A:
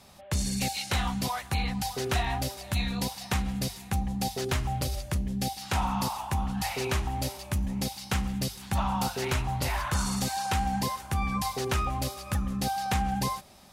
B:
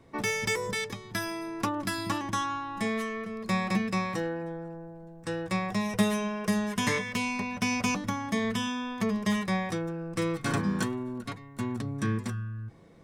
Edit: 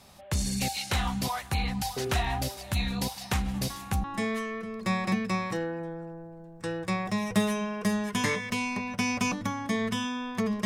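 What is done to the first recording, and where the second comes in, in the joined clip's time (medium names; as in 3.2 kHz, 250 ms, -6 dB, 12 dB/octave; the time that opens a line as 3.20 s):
A
3.54 s: add B from 2.17 s 0.50 s -13 dB
4.04 s: go over to B from 2.67 s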